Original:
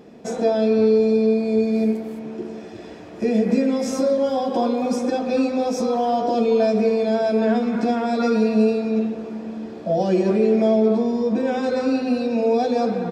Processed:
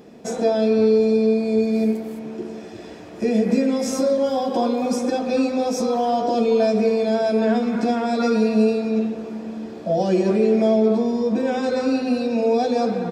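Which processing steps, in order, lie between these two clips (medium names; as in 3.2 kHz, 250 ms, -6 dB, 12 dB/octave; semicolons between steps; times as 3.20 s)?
treble shelf 6.2 kHz +6.5 dB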